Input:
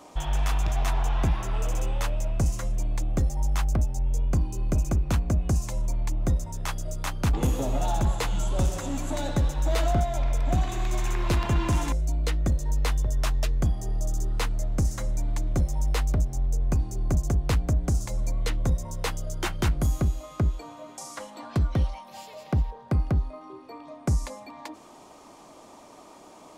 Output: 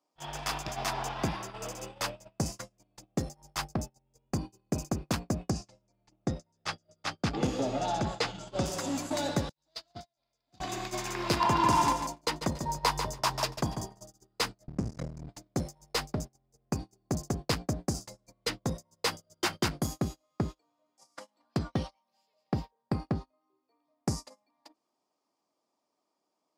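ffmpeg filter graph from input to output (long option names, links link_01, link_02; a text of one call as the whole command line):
ffmpeg -i in.wav -filter_complex "[0:a]asettb=1/sr,asplit=3[link_01][link_02][link_03];[link_01]atrim=end=5.504[link_04];[link_02]atrim=start=5.5:end=8.66,asetpts=PTS-STARTPTS,afade=type=in:duration=0.004:curve=qsin,afade=type=out:start_time=3.156:duration=0.004:curve=qsin,lowpass=5300,bandreject=frequency=1000:width=7.5[link_05];[link_03]atrim=start=8.656[link_06];[link_04][link_05]acrossfade=duration=0.004:curve1=hsin:curve2=qsin[link_07];[link_07][link_06]acrossfade=duration=0.004:curve1=qsin:curve2=hsin,asettb=1/sr,asplit=3[link_08][link_09][link_10];[link_08]atrim=end=9.494[link_11];[link_09]atrim=start=9.49:end=10.6,asetpts=PTS-STARTPTS,afade=type=in:duration=0.004:curve=qsin,afade=type=out:start_time=1.106:duration=0.004:curve=qsin,agate=range=-33dB:threshold=-14dB:ratio=3:release=100:detection=peak,equalizer=frequency=4400:width_type=o:width=0.83:gain=14.5[link_12];[link_10]atrim=start=10.596[link_13];[link_11][link_12]acrossfade=duration=0.004:curve1=hsin:curve2=qsin[link_14];[link_14][link_13]acrossfade=duration=0.004:curve1=qsin:curve2=hsin,asettb=1/sr,asplit=3[link_15][link_16][link_17];[link_15]atrim=end=11.404[link_18];[link_16]atrim=start=11.4:end=14.03,asetpts=PTS-STARTPTS,afade=type=in:duration=0.004:curve=qsin,afade=type=out:start_time=2.626:duration=0.004:curve=qsin,equalizer=frequency=950:width_type=o:width=0.39:gain=13.5,aecho=1:1:143|286|429:0.422|0.105|0.0264,atrim=end_sample=115983[link_19];[link_17]atrim=start=14.026[link_20];[link_18][link_19]acrossfade=duration=0.004:curve1=hsin:curve2=qsin[link_21];[link_21][link_20]acrossfade=duration=0.004:curve1=qsin:curve2=hsin,asettb=1/sr,asplit=3[link_22][link_23][link_24];[link_22]atrim=end=14.674[link_25];[link_23]atrim=start=14.67:end=15.29,asetpts=PTS-STARTPTS,afade=type=in:duration=0.004:curve=qsin,afade=type=out:start_time=0.616:duration=0.004:curve=qsin,aemphasis=mode=reproduction:type=bsi,acompressor=threshold=-13dB:ratio=16:attack=3.2:release=140:knee=1:detection=peak,aeval=exprs='max(val(0),0)':channel_layout=same[link_26];[link_24]atrim=start=15.286[link_27];[link_25][link_26]acrossfade=duration=0.004:curve1=hsin:curve2=qsin[link_28];[link_28][link_27]acrossfade=duration=0.004:curve1=qsin:curve2=hsin,highpass=170,agate=range=-33dB:threshold=-35dB:ratio=16:detection=peak,equalizer=frequency=4900:width_type=o:width=0.29:gain=10.5" out.wav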